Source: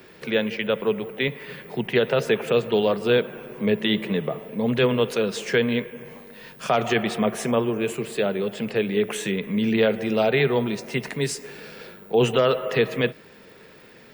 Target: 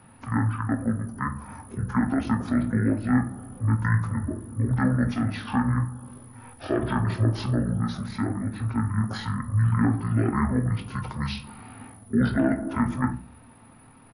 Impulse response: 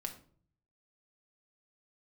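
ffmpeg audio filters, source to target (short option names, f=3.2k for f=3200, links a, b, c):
-filter_complex "[1:a]atrim=start_sample=2205,asetrate=52920,aresample=44100[a];[0:a][a]afir=irnorm=-1:irlink=0,asetrate=22696,aresample=44100,atempo=1.94306"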